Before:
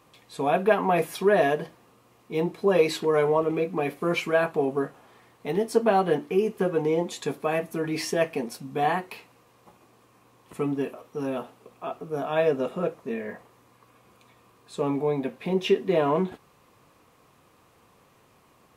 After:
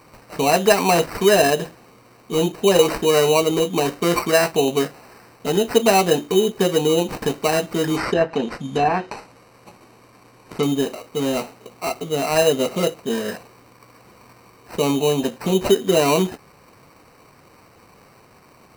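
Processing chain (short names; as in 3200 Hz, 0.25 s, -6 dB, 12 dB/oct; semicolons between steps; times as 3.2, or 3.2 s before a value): in parallel at -2 dB: compressor, threshold -29 dBFS, peak gain reduction 14 dB; on the sum: sample-rate reducer 3400 Hz, jitter 0%; 7.96–10.63 treble ducked by the level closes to 1700 Hz, closed at -17.5 dBFS; gain +4 dB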